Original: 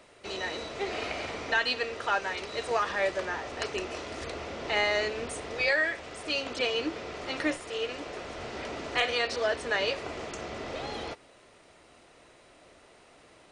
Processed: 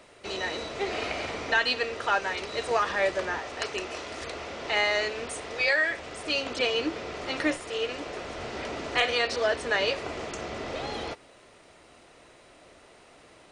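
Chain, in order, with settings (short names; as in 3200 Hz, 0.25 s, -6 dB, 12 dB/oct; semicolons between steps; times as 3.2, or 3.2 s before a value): 3.39–5.9 low shelf 440 Hz -6 dB; gain +2.5 dB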